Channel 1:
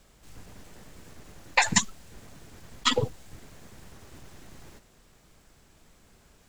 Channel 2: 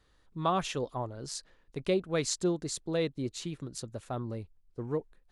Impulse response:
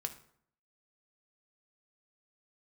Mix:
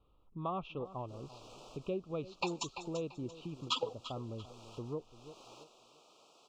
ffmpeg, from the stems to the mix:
-filter_complex "[0:a]highpass=240,acrossover=split=360 6200:gain=0.141 1 0.0708[a][b][c];[a][b][c]amix=inputs=3:normalize=0,adelay=850,volume=2.5dB,asplit=2[d][e];[e]volume=-19.5dB[f];[1:a]lowpass=f=2.7k:w=0.5412,lowpass=f=2.7k:w=1.3066,volume=-1.5dB,asplit=3[g][h][i];[h]volume=-18.5dB[j];[i]apad=whole_len=323666[k];[d][k]sidechaincompress=threshold=-37dB:ratio=8:attack=44:release=830[l];[f][j]amix=inputs=2:normalize=0,aecho=0:1:339|678|1017|1356:1|0.29|0.0841|0.0244[m];[l][g][m]amix=inputs=3:normalize=0,asuperstop=centerf=1800:order=12:qfactor=1.6,acompressor=threshold=-47dB:ratio=1.5"

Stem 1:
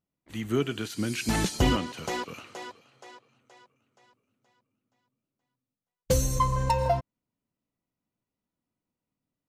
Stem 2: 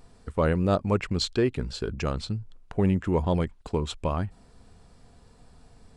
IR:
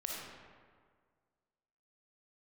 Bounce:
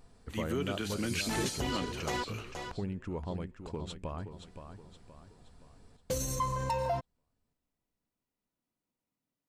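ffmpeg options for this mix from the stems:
-filter_complex "[0:a]alimiter=limit=-21.5dB:level=0:latency=1:release=22,lowshelf=f=140:g=-8.5,volume=-1.5dB,asplit=3[a][b][c];[a]atrim=end=2.76,asetpts=PTS-STARTPTS,afade=t=out:st=2.756:d=0.004:c=hsin[d];[b]atrim=start=2.76:end=4.28,asetpts=PTS-STARTPTS,volume=0[e];[c]atrim=start=4.28,asetpts=PTS-STARTPTS,afade=t=in:d=0.004:c=hsin[f];[d][e][f]concat=n=3:v=0:a=1[g];[1:a]acompressor=threshold=-35dB:ratio=2,volume=-5.5dB,asplit=2[h][i];[i]volume=-9dB,aecho=0:1:522|1044|1566|2088|2610|3132:1|0.41|0.168|0.0689|0.0283|0.0116[j];[g][h][j]amix=inputs=3:normalize=0"

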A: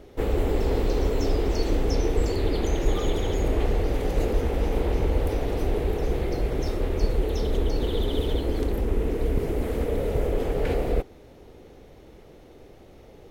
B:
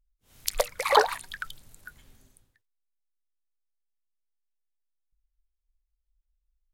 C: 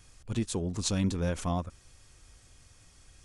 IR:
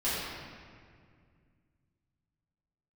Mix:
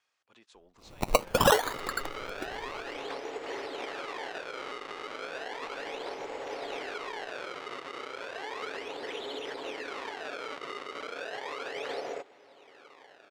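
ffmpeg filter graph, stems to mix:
-filter_complex "[0:a]aecho=1:1:7.2:0.31,alimiter=limit=-17.5dB:level=0:latency=1:release=114,acrusher=samples=30:mix=1:aa=0.000001:lfo=1:lforange=48:lforate=0.34,adelay=1200,volume=1dB[a];[1:a]equalizer=f=480:w=0.74:g=8,acompressor=threshold=-21dB:ratio=10,acrusher=samples=21:mix=1:aa=0.000001:lfo=1:lforange=12.6:lforate=0.57,adelay=550,volume=3dB[b];[2:a]alimiter=limit=-23dB:level=0:latency=1:release=400,volume=-12.5dB[c];[a][c]amix=inputs=2:normalize=0,highpass=720,lowpass=3.6k,alimiter=level_in=1.5dB:limit=-24dB:level=0:latency=1:release=85,volume=-1.5dB,volume=0dB[d];[b][d]amix=inputs=2:normalize=0"

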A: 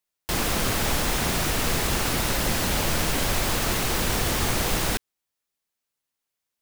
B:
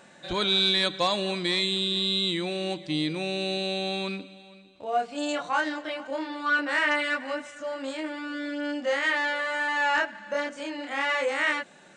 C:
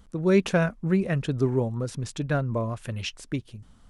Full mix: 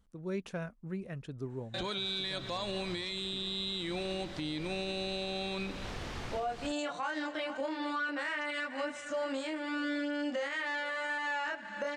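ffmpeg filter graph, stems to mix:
-filter_complex "[0:a]lowpass=4.3k,adelay=1750,volume=-15dB[a];[1:a]agate=range=-20dB:threshold=-46dB:ratio=16:detection=peak,adelay=1500,volume=2.5dB[b];[2:a]volume=-16dB[c];[a][b]amix=inputs=2:normalize=0,alimiter=limit=-19dB:level=0:latency=1:release=264,volume=0dB[d];[c][d]amix=inputs=2:normalize=0,alimiter=level_in=3dB:limit=-24dB:level=0:latency=1:release=255,volume=-3dB"

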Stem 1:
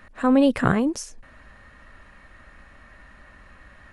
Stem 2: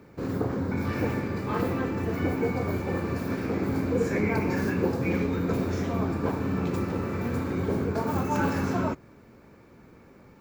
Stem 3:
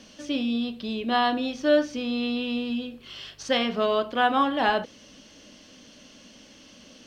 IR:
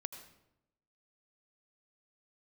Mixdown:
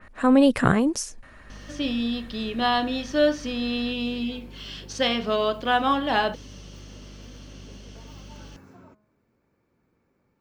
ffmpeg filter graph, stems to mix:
-filter_complex "[0:a]volume=0.5dB,asplit=2[a][b];[1:a]bandreject=f=211.1:t=h:w=4,bandreject=f=422.2:t=h:w=4,bandreject=f=633.3:t=h:w=4,bandreject=f=844.4:t=h:w=4,bandreject=f=1.0555k:t=h:w=4,bandreject=f=1.2666k:t=h:w=4,bandreject=f=1.4777k:t=h:w=4,acompressor=threshold=-33dB:ratio=2,volume=-17.5dB[c];[2:a]aeval=exprs='val(0)+0.00708*(sin(2*PI*50*n/s)+sin(2*PI*2*50*n/s)/2+sin(2*PI*3*50*n/s)/3+sin(2*PI*4*50*n/s)/4+sin(2*PI*5*50*n/s)/5)':c=same,adelay=1500,volume=0dB[d];[b]apad=whole_len=458810[e];[c][e]sidechaincompress=threshold=-47dB:ratio=8:attack=16:release=470[f];[a][f][d]amix=inputs=3:normalize=0,adynamicequalizer=threshold=0.00891:dfrequency=3200:dqfactor=0.7:tfrequency=3200:tqfactor=0.7:attack=5:release=100:ratio=0.375:range=2:mode=boostabove:tftype=highshelf"

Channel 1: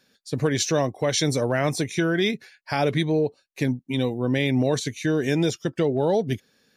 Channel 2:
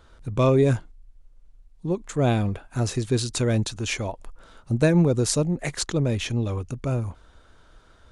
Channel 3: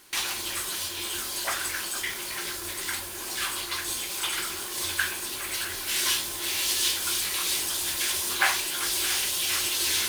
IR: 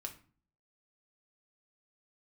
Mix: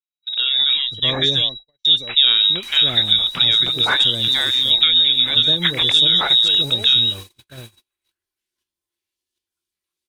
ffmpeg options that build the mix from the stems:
-filter_complex "[0:a]volume=-6.5dB,asplit=3[a][b][c];[a]atrim=end=1.49,asetpts=PTS-STARTPTS,afade=t=out:st=1.486:d=0.004:c=hsin[d];[b]atrim=start=1.49:end=2.43,asetpts=PTS-STARTPTS,volume=0[e];[c]atrim=start=2.43,asetpts=PTS-STARTPTS,afade=t=in:d=0.004:c=hsin[f];[d][e][f]concat=n=3:v=0:a=1,asplit=2[g][h];[h]volume=-20dB[i];[1:a]volume=1.5dB,asplit=3[j][k][l];[k]volume=-21dB[m];[2:a]acrossover=split=440[n][o];[o]acompressor=threshold=-34dB:ratio=4[p];[n][p]amix=inputs=2:normalize=0,adelay=2500,volume=-12.5dB[q];[l]apad=whole_len=555137[r];[q][r]sidechaincompress=threshold=-31dB:ratio=8:attack=10:release=280[s];[g][j]amix=inputs=2:normalize=0,lowpass=f=3.3k:t=q:w=0.5098,lowpass=f=3.3k:t=q:w=0.6013,lowpass=f=3.3k:t=q:w=0.9,lowpass=f=3.3k:t=q:w=2.563,afreqshift=-3900,acompressor=threshold=-21dB:ratio=6,volume=0dB[t];[i][m]amix=inputs=2:normalize=0,aecho=0:1:653:1[u];[s][t][u]amix=inputs=3:normalize=0,agate=range=-51dB:threshold=-40dB:ratio=16:detection=peak,dynaudnorm=f=120:g=9:m=13dB"

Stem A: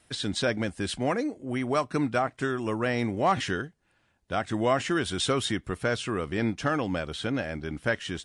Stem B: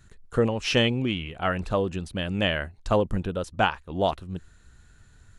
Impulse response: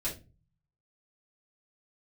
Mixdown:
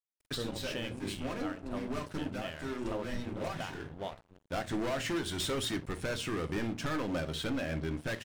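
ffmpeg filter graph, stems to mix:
-filter_complex "[0:a]volume=29dB,asoftclip=hard,volume=-29dB,adelay=200,volume=-0.5dB,asplit=2[a][b];[b]volume=-9.5dB[c];[1:a]bandreject=f=54.8:t=h:w=4,bandreject=f=109.6:t=h:w=4,bandreject=f=164.4:t=h:w=4,bandreject=f=219.2:t=h:w=4,bandreject=f=274:t=h:w=4,bandreject=f=328.8:t=h:w=4,bandreject=f=383.6:t=h:w=4,bandreject=f=438.4:t=h:w=4,bandreject=f=493.2:t=h:w=4,bandreject=f=548:t=h:w=4,bandreject=f=602.8:t=h:w=4,bandreject=f=657.6:t=h:w=4,bandreject=f=712.4:t=h:w=4,bandreject=f=767.2:t=h:w=4,bandreject=f=822:t=h:w=4,bandreject=f=876.8:t=h:w=4,bandreject=f=931.6:t=h:w=4,bandreject=f=986.4:t=h:w=4,bandreject=f=1.0412k:t=h:w=4,bandreject=f=1.096k:t=h:w=4,bandreject=f=1.1508k:t=h:w=4,bandreject=f=1.2056k:t=h:w=4,bandreject=f=1.2604k:t=h:w=4,bandreject=f=1.3152k:t=h:w=4,volume=-14dB,asplit=3[d][e][f];[e]volume=-11.5dB[g];[f]apad=whole_len=372229[h];[a][h]sidechaincompress=threshold=-50dB:ratio=8:attack=16:release=357[i];[2:a]atrim=start_sample=2205[j];[c][g]amix=inputs=2:normalize=0[k];[k][j]afir=irnorm=-1:irlink=0[l];[i][d][l]amix=inputs=3:normalize=0,aeval=exprs='sgn(val(0))*max(abs(val(0))-0.00562,0)':c=same,alimiter=level_in=1.5dB:limit=-24dB:level=0:latency=1:release=285,volume=-1.5dB"

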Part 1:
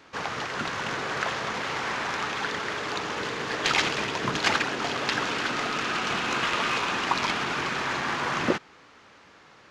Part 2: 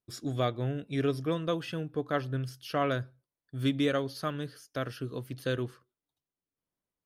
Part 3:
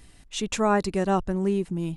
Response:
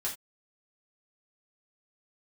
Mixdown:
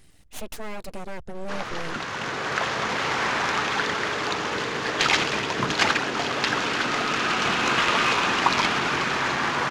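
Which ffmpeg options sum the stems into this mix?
-filter_complex "[0:a]dynaudnorm=f=140:g=17:m=7.5dB,adelay=1350,volume=-1.5dB[a];[2:a]bandreject=f=1k:w=6.6,volume=-2.5dB,aeval=exprs='abs(val(0))':c=same,alimiter=limit=-22.5dB:level=0:latency=1:release=162,volume=0dB[b];[a][b]amix=inputs=2:normalize=0"

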